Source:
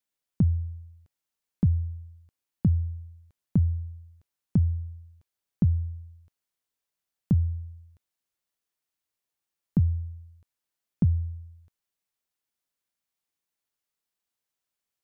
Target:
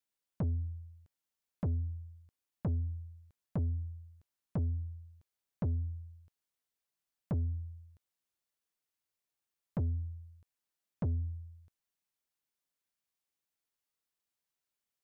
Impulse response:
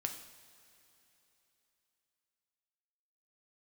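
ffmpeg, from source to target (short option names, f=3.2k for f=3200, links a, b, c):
-af "asoftclip=type=tanh:threshold=-25.5dB,volume=-3.5dB"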